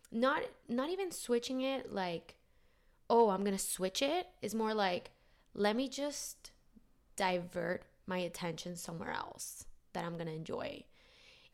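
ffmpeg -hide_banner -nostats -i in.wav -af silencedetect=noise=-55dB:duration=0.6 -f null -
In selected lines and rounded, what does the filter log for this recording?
silence_start: 2.32
silence_end: 3.10 | silence_duration: 0.78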